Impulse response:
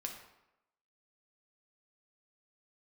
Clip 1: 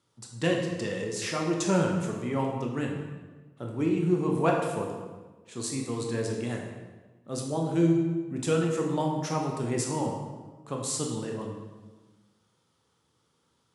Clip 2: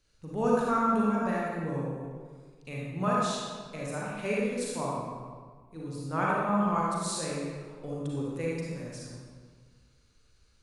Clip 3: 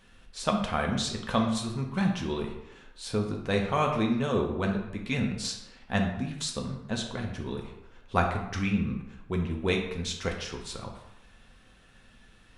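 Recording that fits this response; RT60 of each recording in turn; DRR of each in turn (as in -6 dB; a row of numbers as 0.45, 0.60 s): 3; 1.3, 1.6, 0.90 s; 0.0, -5.5, 1.0 dB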